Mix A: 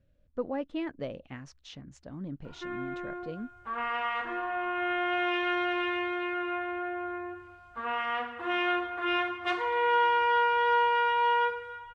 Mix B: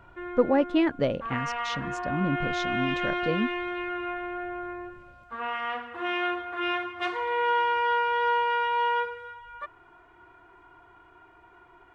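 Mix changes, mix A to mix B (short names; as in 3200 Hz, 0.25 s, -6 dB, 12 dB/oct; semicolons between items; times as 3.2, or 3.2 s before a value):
speech +11.0 dB; background: entry -2.45 s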